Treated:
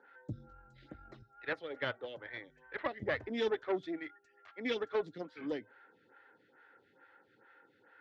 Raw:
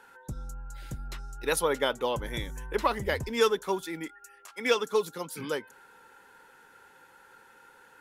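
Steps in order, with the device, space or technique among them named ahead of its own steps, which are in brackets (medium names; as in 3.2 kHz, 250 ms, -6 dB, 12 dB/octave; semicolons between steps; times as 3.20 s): 1.22–3.02 s: three-band isolator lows -18 dB, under 530 Hz, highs -14 dB, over 3.6 kHz; vibe pedal into a guitar amplifier (lamp-driven phase shifter 2.3 Hz; valve stage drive 26 dB, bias 0.8; cabinet simulation 94–3800 Hz, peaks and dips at 110 Hz +9 dB, 300 Hz +8 dB, 640 Hz +4 dB, 970 Hz -9 dB, 1.9 kHz +5 dB, 2.7 kHz -4 dB)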